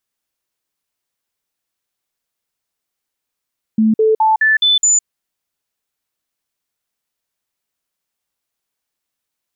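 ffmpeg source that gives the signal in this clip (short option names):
-f lavfi -i "aevalsrc='0.355*clip(min(mod(t,0.21),0.16-mod(t,0.21))/0.005,0,1)*sin(2*PI*219*pow(2,floor(t/0.21)/1)*mod(t,0.21))':d=1.26:s=44100"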